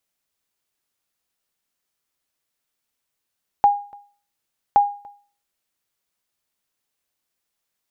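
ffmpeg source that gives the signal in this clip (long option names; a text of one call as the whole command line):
ffmpeg -f lavfi -i "aevalsrc='0.447*(sin(2*PI*815*mod(t,1.12))*exp(-6.91*mod(t,1.12)/0.41)+0.0473*sin(2*PI*815*max(mod(t,1.12)-0.29,0))*exp(-6.91*max(mod(t,1.12)-0.29,0)/0.41))':duration=2.24:sample_rate=44100" out.wav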